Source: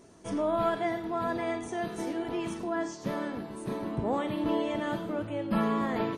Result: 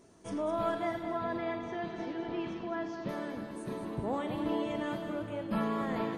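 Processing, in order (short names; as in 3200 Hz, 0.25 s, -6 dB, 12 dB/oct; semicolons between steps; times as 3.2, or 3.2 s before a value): 1.03–3.09 LPF 4600 Hz 24 dB/oct; split-band echo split 310 Hz, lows 0.358 s, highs 0.21 s, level -8.5 dB; gain -4.5 dB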